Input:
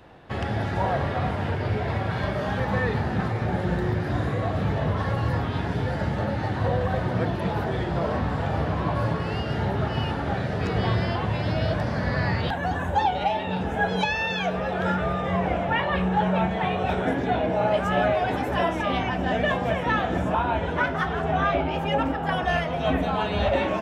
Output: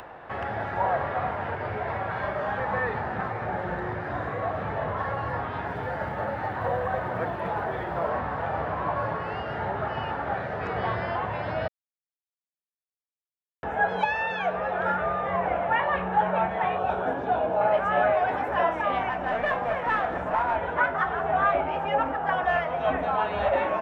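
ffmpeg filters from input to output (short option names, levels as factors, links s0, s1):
-filter_complex "[0:a]asettb=1/sr,asplit=3[s0][s1][s2];[s0]atrim=end=5.654[s3];[s1]atrim=start=5.65:end=8.1,asetpts=PTS-STARTPTS,afade=t=in:d=0.004:c=qsin,afade=t=out:st=2.446:d=0.004:c=qsin,acrusher=bits=8:mode=log:mix=0:aa=0.000001[s4];[s2]atrim=start=8.096[s5];[s3][s4]acrossfade=d=0.004:c1=hsin:c2=qsin[s6];[s6][s5]acrossfade=d=0.004:c1=qsin:c2=hsin,asettb=1/sr,asplit=3[s7][s8][s9];[s7]atrim=end=16.784[s10];[s8]atrim=start=16.78:end=17.61,asetpts=PTS-STARTPTS,afade=t=in:d=0.004:c=qsin,afade=t=out:st=0.826:d=0.004:c=qsin,equalizer=f=2000:t=o:w=0.36:g=-13.5[s11];[s9]atrim=start=17.606[s12];[s10][s11]acrossfade=d=0.004:c1=hsin:c2=qsin[s13];[s13][s12]acrossfade=d=0.004:c1=qsin:c2=hsin,asettb=1/sr,asplit=3[s14][s15][s16];[s14]atrim=end=19.094[s17];[s15]atrim=start=19.09:end=20.56,asetpts=PTS-STARTPTS,afade=t=in:d=0.004:c=qsin,afade=t=out:st=1.466:d=0.004:c=qsin,aeval=exprs='clip(val(0),-1,0.0562)':c=same[s18];[s16]atrim=start=20.556[s19];[s17][s18]acrossfade=d=0.004:c1=hsin:c2=qsin[s20];[s20][s19]acrossfade=d=0.004:c1=qsin:c2=hsin,asplit=3[s21][s22][s23];[s21]atrim=end=11.68,asetpts=PTS-STARTPTS,afade=t=out:st=11.676:d=0.004:c=hsin[s24];[s22]atrim=start=11.68:end=13.63,asetpts=PTS-STARTPTS,volume=0[s25];[s23]atrim=start=13.63,asetpts=PTS-STARTPTS,afade=t=in:d=0.004:c=hsin[s26];[s24][s25][s26]concat=n=3:v=0:a=1,acrossover=split=530 2100:gain=0.2 1 0.112[s27][s28][s29];[s27][s28][s29]amix=inputs=3:normalize=0,acompressor=mode=upward:threshold=0.0126:ratio=2.5,volume=1.41"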